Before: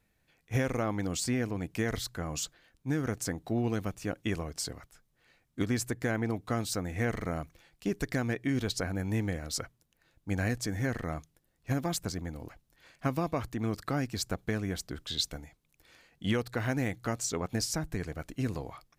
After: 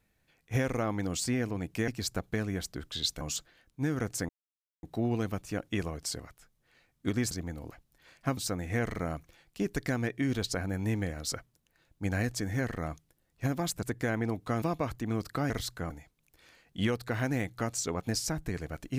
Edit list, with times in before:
0:01.88–0:02.28: swap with 0:14.03–0:15.36
0:03.36: splice in silence 0.54 s
0:05.84–0:06.63: swap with 0:12.09–0:13.15

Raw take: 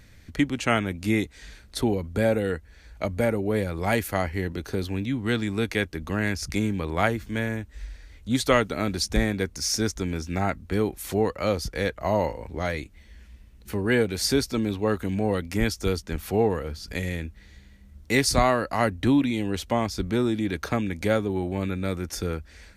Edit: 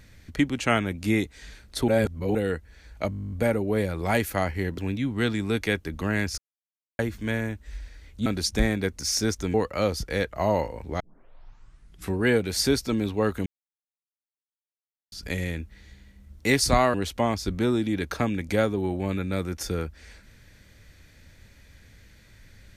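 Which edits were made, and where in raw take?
0:01.88–0:02.35: reverse
0:03.10: stutter 0.02 s, 12 plays
0:04.56–0:04.86: remove
0:06.46–0:07.07: silence
0:08.34–0:08.83: remove
0:10.11–0:11.19: remove
0:12.65: tape start 1.19 s
0:15.11–0:16.77: silence
0:18.59–0:19.46: remove

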